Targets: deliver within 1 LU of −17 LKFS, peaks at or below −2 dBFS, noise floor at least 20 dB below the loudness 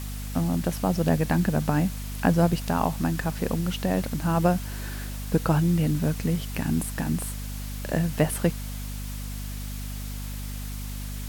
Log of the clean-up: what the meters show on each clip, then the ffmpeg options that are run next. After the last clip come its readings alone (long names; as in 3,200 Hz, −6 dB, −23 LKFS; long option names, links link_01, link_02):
mains hum 50 Hz; hum harmonics up to 250 Hz; level of the hum −31 dBFS; background noise floor −34 dBFS; target noise floor −47 dBFS; integrated loudness −27.0 LKFS; sample peak −7.0 dBFS; target loudness −17.0 LKFS
→ -af "bandreject=frequency=50:width_type=h:width=6,bandreject=frequency=100:width_type=h:width=6,bandreject=frequency=150:width_type=h:width=6,bandreject=frequency=200:width_type=h:width=6,bandreject=frequency=250:width_type=h:width=6"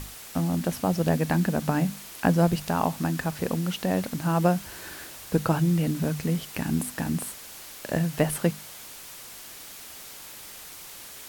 mains hum none found; background noise floor −43 dBFS; target noise floor −47 dBFS
→ -af "afftdn=noise_reduction=6:noise_floor=-43"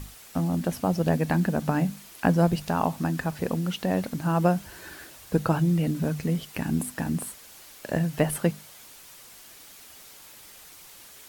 background noise floor −49 dBFS; integrated loudness −26.5 LKFS; sample peak −7.0 dBFS; target loudness −17.0 LKFS
→ -af "volume=9.5dB,alimiter=limit=-2dB:level=0:latency=1"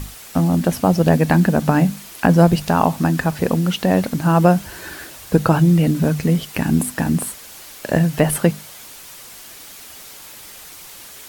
integrated loudness −17.5 LKFS; sample peak −2.0 dBFS; background noise floor −39 dBFS